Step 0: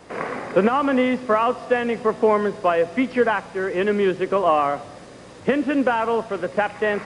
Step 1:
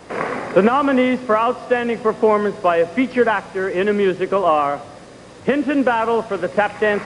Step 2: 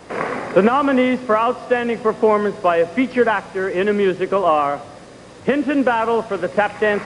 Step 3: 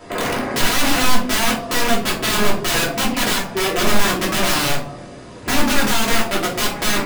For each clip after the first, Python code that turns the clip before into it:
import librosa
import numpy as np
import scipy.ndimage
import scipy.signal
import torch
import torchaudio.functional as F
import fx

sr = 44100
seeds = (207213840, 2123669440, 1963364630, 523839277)

y1 = fx.rider(x, sr, range_db=4, speed_s=2.0)
y1 = F.gain(torch.from_numpy(y1), 3.0).numpy()
y2 = y1
y3 = (np.mod(10.0 ** (15.5 / 20.0) * y2 + 1.0, 2.0) - 1.0) / 10.0 ** (15.5 / 20.0)
y3 = fx.room_shoebox(y3, sr, seeds[0], volume_m3=250.0, walls='furnished', distance_m=2.9)
y3 = F.gain(torch.from_numpy(y3), -3.0).numpy()